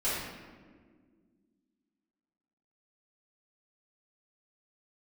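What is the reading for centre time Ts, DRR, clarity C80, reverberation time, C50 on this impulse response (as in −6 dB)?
89 ms, −12.0 dB, 1.5 dB, non-exponential decay, −1.5 dB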